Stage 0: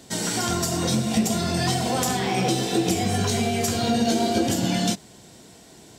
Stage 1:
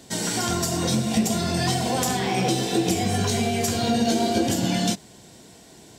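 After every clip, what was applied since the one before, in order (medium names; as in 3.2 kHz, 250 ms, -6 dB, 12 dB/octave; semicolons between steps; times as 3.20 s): band-stop 1.3 kHz, Q 18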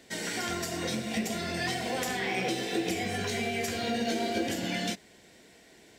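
ten-band graphic EQ 125 Hz -7 dB, 500 Hz +4 dB, 1 kHz -4 dB, 2 kHz +11 dB, 8 kHz -3 dB; companded quantiser 8-bit; trim -9 dB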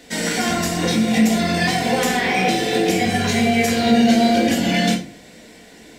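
simulated room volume 280 m³, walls furnished, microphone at 1.9 m; trim +8.5 dB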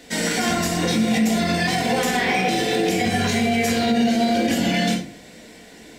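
peak limiter -11.5 dBFS, peak gain reduction 7.5 dB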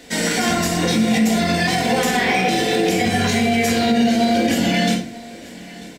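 delay 941 ms -20 dB; trim +2.5 dB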